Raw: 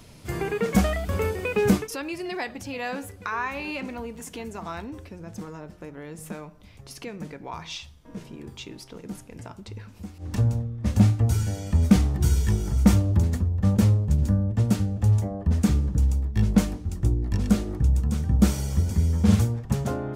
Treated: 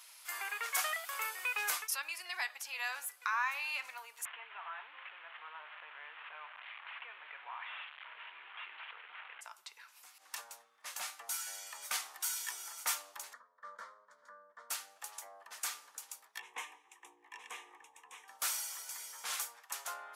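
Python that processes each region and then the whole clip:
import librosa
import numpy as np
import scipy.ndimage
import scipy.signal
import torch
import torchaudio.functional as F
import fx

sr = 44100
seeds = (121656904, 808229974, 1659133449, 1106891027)

y = fx.chain(x, sr, fx.delta_mod(bps=16000, step_db=-42.5),
    fx.highpass(hz=320.0, slope=6),
    fx.env_flatten(amount_pct=50), at=(4.25, 9.41))
y = fx.chain(y, sr, fx.lowpass(hz=1900.0, slope=12),
    fx.fixed_phaser(hz=530.0, stages=8), at=(13.33, 14.7))
y = fx.chain(y, sr, fx.lowpass(hz=5100.0, slope=12),
    fx.low_shelf(hz=400.0, db=11.5),
    fx.fixed_phaser(hz=940.0, stages=8), at=(16.39, 18.28))
y = scipy.signal.sosfilt(scipy.signal.butter(4, 1000.0, 'highpass', fs=sr, output='sos'), y)
y = fx.peak_eq(y, sr, hz=12000.0, db=8.5, octaves=0.72)
y = y * librosa.db_to_amplitude(-3.0)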